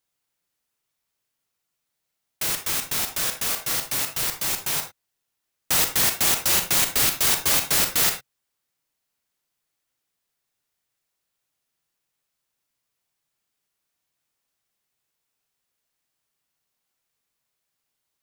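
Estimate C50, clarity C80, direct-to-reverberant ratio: 8.5 dB, 14.5 dB, 5.5 dB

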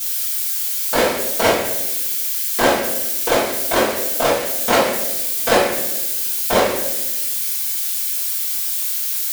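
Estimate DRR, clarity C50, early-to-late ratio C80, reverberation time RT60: -11.0 dB, 2.0 dB, 5.5 dB, 1.1 s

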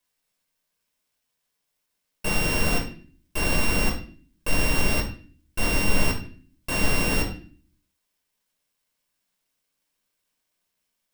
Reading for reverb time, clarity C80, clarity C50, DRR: 0.45 s, 13.0 dB, 8.0 dB, -0.5 dB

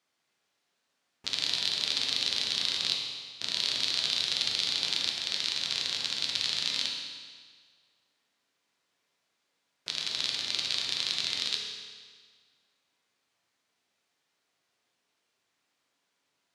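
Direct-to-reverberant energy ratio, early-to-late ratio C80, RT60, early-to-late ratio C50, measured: -1.0 dB, 4.0 dB, 1.7 s, 2.0 dB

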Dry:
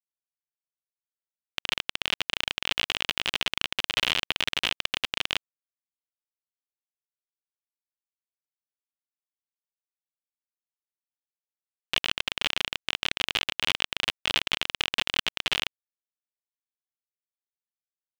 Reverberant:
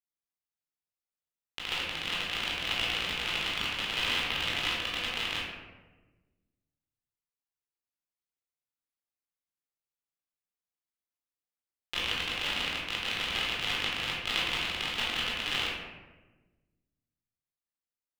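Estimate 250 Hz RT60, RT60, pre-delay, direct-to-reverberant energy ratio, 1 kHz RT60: 1.6 s, 1.3 s, 14 ms, -6.0 dB, 1.1 s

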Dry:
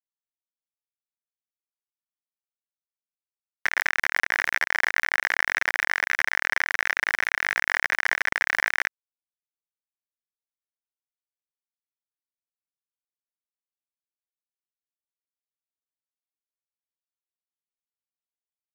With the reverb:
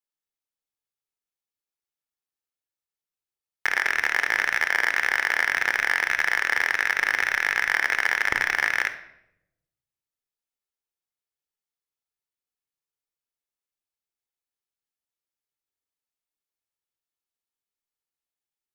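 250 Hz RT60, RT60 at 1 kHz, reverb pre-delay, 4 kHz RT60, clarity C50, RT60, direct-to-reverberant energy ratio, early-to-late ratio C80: 1.2 s, 0.70 s, 23 ms, 0.60 s, 11.5 dB, 0.80 s, 9.0 dB, 14.0 dB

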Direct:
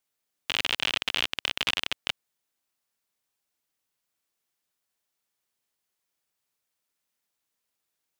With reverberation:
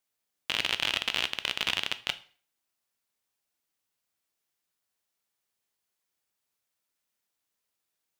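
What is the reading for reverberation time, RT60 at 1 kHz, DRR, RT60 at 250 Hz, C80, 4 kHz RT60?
0.45 s, 0.40 s, 11.5 dB, 0.40 s, 21.5 dB, 0.40 s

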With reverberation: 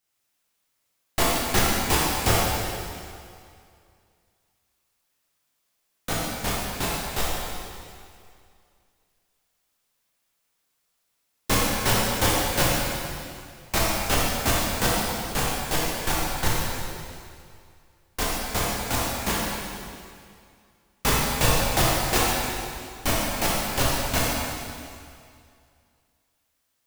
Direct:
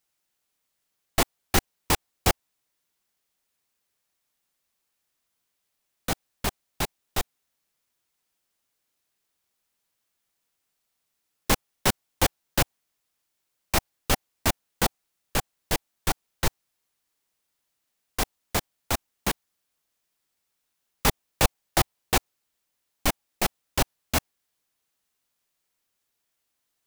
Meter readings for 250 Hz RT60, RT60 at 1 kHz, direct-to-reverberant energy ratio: 2.2 s, 2.3 s, -6.5 dB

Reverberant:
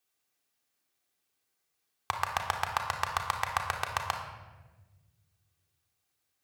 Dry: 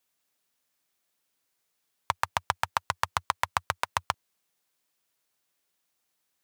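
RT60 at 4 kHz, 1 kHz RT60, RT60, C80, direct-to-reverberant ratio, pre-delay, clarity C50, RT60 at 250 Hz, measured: 0.85 s, 1.1 s, 1.3 s, 8.0 dB, 1.0 dB, 3 ms, 5.5 dB, 2.0 s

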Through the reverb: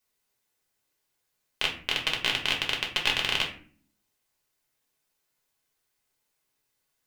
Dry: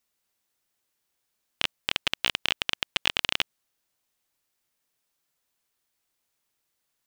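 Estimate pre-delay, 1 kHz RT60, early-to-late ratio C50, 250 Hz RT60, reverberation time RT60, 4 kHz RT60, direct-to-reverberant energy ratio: 5 ms, 0.45 s, 9.0 dB, 0.85 s, 0.50 s, 0.30 s, -1.0 dB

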